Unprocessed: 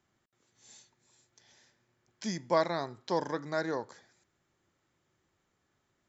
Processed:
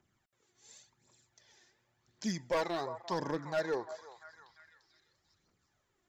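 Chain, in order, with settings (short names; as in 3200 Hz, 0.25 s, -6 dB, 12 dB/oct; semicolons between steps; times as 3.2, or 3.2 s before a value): phaser 0.91 Hz, delay 2.9 ms, feedback 55%; delay with a stepping band-pass 0.345 s, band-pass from 820 Hz, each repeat 0.7 oct, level -11.5 dB; hard clip -23.5 dBFS, distortion -11 dB; gain -3 dB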